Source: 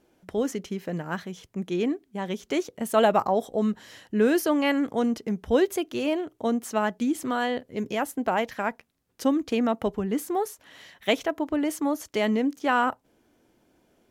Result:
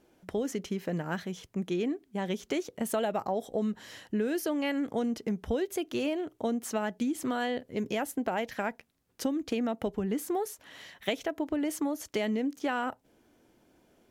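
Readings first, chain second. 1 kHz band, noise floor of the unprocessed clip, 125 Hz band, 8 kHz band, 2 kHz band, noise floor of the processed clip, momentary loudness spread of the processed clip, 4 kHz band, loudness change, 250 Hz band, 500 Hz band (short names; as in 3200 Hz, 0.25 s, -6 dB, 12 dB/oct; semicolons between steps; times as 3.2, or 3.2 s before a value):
-8.0 dB, -69 dBFS, -3.0 dB, -2.5 dB, -6.5 dB, -69 dBFS, 5 LU, -5.0 dB, -6.0 dB, -5.0 dB, -6.5 dB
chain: dynamic EQ 1100 Hz, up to -6 dB, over -42 dBFS, Q 2.4; compressor, threshold -27 dBFS, peak gain reduction 10.5 dB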